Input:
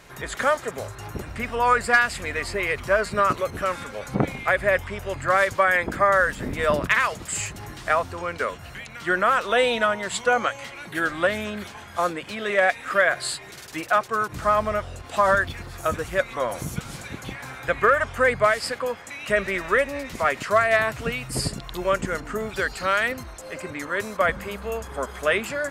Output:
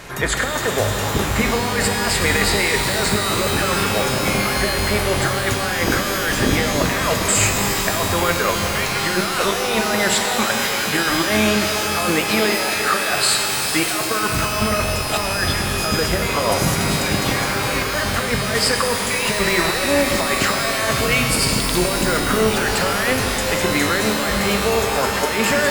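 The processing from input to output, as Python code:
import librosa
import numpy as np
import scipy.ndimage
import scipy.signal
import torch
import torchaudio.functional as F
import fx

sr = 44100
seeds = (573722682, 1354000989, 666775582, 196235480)

y = fx.over_compress(x, sr, threshold_db=-29.0, ratio=-1.0)
y = fx.rev_shimmer(y, sr, seeds[0], rt60_s=3.9, semitones=12, shimmer_db=-2, drr_db=3.5)
y = F.gain(torch.from_numpy(y), 7.0).numpy()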